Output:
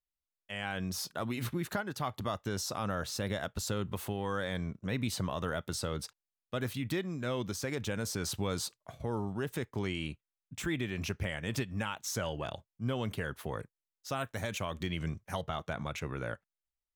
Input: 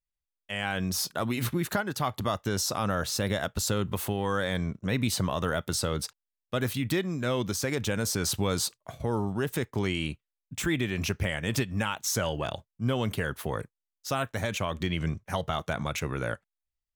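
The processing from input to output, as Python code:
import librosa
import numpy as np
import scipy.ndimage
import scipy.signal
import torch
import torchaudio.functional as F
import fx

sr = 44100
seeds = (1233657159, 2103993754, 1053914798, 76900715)

y = fx.high_shelf(x, sr, hz=6600.0, db=fx.steps((0.0, -4.0), (14.19, 3.0), (15.41, -8.5)))
y = y * librosa.db_to_amplitude(-6.0)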